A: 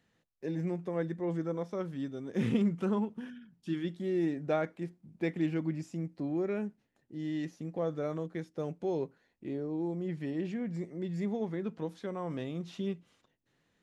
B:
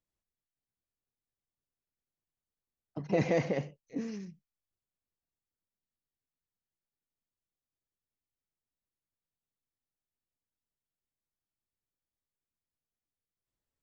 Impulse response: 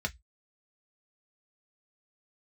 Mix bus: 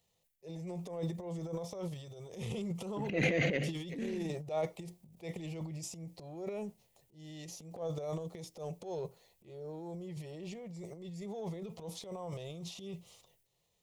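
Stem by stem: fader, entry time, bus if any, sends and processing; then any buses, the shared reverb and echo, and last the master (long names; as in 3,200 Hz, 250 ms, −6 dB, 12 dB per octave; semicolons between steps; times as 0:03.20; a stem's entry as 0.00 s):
−2.0 dB, 0.00 s, no send, phaser with its sweep stopped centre 650 Hz, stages 4
+1.5 dB, 0.00 s, no send, low-shelf EQ 200 Hz −6 dB; phaser with its sweep stopped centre 2,300 Hz, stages 4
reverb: not used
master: high-shelf EQ 4,100 Hz +9 dB; transient designer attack −9 dB, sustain +11 dB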